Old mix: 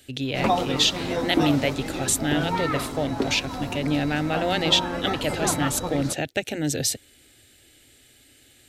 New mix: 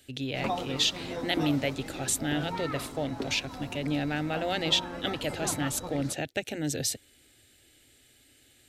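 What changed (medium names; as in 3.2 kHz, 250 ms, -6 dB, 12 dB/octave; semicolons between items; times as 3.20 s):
speech -5.5 dB; background -9.5 dB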